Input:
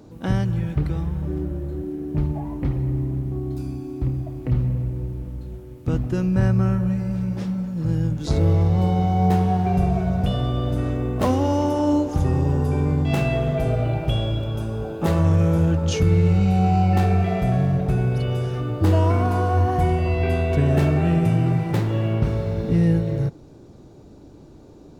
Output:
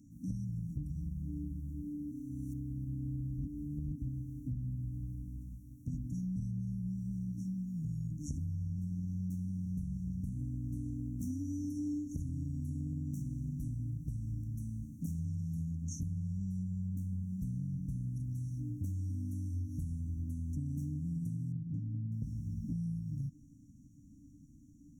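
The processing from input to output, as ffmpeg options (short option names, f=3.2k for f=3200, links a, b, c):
-filter_complex "[0:a]asettb=1/sr,asplit=3[a][b][c];[a]atrim=end=16.634[d];[b]atrim=start=16.63:end=17.41,asetpts=PTS-STARTPTS,afade=t=in:d=0.004:c=qsin,afade=t=out:st=0.776:d=0.004:c=qsin,equalizer=f=4.6k:w=1.5:g=-10.5[e];[c]atrim=start=17.406[f];[d][e]acrossfade=d=0.004:c1=hsin:c2=qsin[g];[g][f]acrossfade=d=0.004:c1=qsin:c2=hsin,asettb=1/sr,asplit=3[h][i][j];[h]atrim=end=21.524[k];[i]atrim=start=21.52:end=22.12,asetpts=PTS-STARTPTS,afade=t=in:d=0.004:c=qsin,afade=t=out:st=0.596:d=0.004:c=qsin,lowpass=2k[l];[j]atrim=start=22.116[m];[k][l]acrossfade=d=0.004:c1=hsin:c2=qsin[n];[n][m]acrossfade=d=0.004:c1=qsin:c2=hsin,asplit=3[o][p][q];[o]atrim=end=2.122[r];[p]atrim=start=2.118:end=3.982,asetpts=PTS-STARTPTS,areverse[s];[q]atrim=start=3.978[t];[r][s]acrossfade=d=0.004:c1=hsin:c2=hsin[u];[u][t]acrossfade=d=0.004:c1=hsin:c2=hsin,afftfilt=real='re*(1-between(b*sr/4096,310,5500))':imag='im*(1-between(b*sr/4096,310,5500))':win_size=4096:overlap=0.75,lowshelf=f=230:g=-5,acompressor=threshold=-27dB:ratio=6,volume=-7.5dB"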